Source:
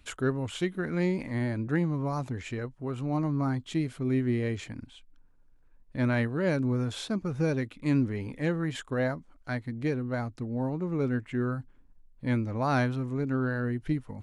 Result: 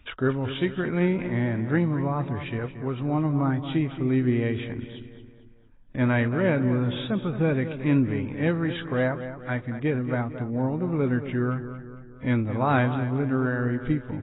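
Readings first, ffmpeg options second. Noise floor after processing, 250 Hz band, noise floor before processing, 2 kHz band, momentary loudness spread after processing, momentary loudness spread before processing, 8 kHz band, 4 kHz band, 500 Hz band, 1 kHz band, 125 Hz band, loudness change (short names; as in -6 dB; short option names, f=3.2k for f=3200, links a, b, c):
-48 dBFS, +4.5 dB, -59 dBFS, +5.0 dB, 8 LU, 8 LU, under -30 dB, +3.5 dB, +4.5 dB, +5.0 dB, +4.5 dB, +4.5 dB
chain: -filter_complex "[0:a]asplit=2[a][b];[b]adelay=226,lowpass=f=3k:p=1,volume=-11dB,asplit=2[c][d];[d]adelay=226,lowpass=f=3k:p=1,volume=0.51,asplit=2[e][f];[f]adelay=226,lowpass=f=3k:p=1,volume=0.51,asplit=2[g][h];[h]adelay=226,lowpass=f=3k:p=1,volume=0.51,asplit=2[i][j];[j]adelay=226,lowpass=f=3k:p=1,volume=0.51[k];[c][e][g][i][k]amix=inputs=5:normalize=0[l];[a][l]amix=inputs=2:normalize=0,volume=4dB" -ar 16000 -c:a aac -b:a 16k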